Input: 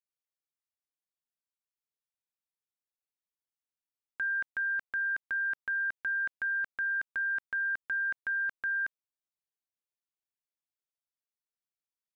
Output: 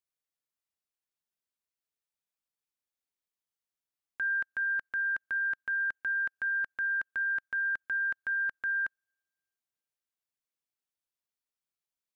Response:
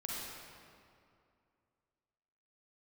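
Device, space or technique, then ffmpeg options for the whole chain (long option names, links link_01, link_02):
keyed gated reverb: -filter_complex "[0:a]asplit=3[link_01][link_02][link_03];[1:a]atrim=start_sample=2205[link_04];[link_02][link_04]afir=irnorm=-1:irlink=0[link_05];[link_03]apad=whole_len=536198[link_06];[link_05][link_06]sidechaingate=range=-49dB:threshold=-29dB:ratio=16:detection=peak,volume=-0.5dB[link_07];[link_01][link_07]amix=inputs=2:normalize=0"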